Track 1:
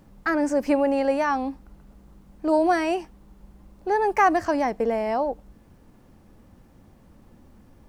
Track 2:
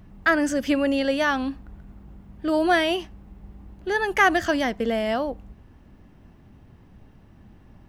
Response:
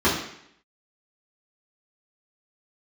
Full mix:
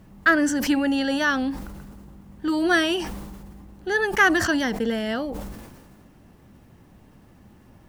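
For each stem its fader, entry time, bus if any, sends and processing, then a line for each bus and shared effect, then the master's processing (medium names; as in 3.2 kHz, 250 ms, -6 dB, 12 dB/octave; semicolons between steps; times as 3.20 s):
-3.0 dB, 0.00 s, no send, tilt EQ +1.5 dB/octave; decay stretcher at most 38 dB/s
+0.5 dB, 0.00 s, no send, bass shelf 67 Hz -9.5 dB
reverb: none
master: none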